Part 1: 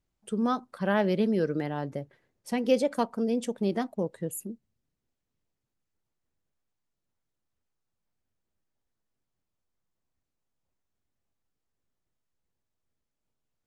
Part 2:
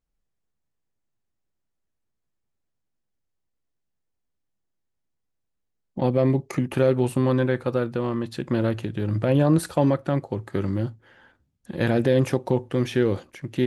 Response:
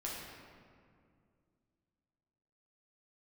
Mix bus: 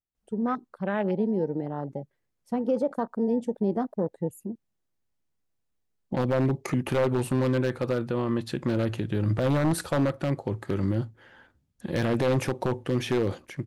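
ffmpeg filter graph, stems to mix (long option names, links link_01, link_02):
-filter_complex "[0:a]dynaudnorm=framelen=380:gausssize=17:maxgain=5dB,afwtdn=0.0224,volume=-0.5dB[link_01];[1:a]aeval=exprs='0.211*(abs(mod(val(0)/0.211+3,4)-2)-1)':channel_layout=same,adelay=150,volume=0.5dB[link_02];[link_01][link_02]amix=inputs=2:normalize=0,alimiter=limit=-16.5dB:level=0:latency=1:release=43"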